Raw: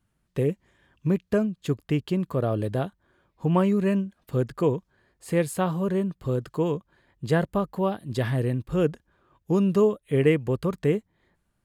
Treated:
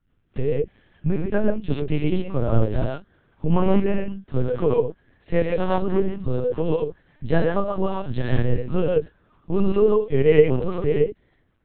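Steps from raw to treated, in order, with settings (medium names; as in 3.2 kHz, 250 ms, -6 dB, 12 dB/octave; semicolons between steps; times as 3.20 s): dynamic bell 310 Hz, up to -5 dB, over -34 dBFS, Q 1.5; gated-style reverb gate 150 ms rising, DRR -0.5 dB; rotary cabinet horn 5 Hz; harmonic-percussive split harmonic +8 dB; LPC vocoder at 8 kHz pitch kept; trim -1 dB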